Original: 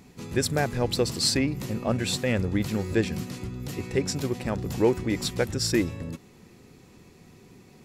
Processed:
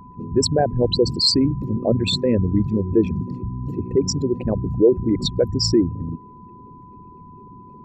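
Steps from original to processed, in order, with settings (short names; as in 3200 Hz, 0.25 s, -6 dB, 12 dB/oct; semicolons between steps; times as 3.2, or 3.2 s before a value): formant sharpening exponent 3; whine 1000 Hz -50 dBFS; gain +7 dB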